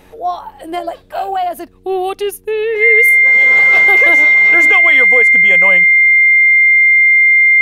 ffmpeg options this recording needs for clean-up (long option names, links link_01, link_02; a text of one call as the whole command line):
ffmpeg -i in.wav -af "bandreject=frequency=92.6:width_type=h:width=4,bandreject=frequency=185.2:width_type=h:width=4,bandreject=frequency=277.8:width_type=h:width=4,bandreject=frequency=370.4:width_type=h:width=4,bandreject=frequency=463:width_type=h:width=4,bandreject=frequency=2100:width=30" out.wav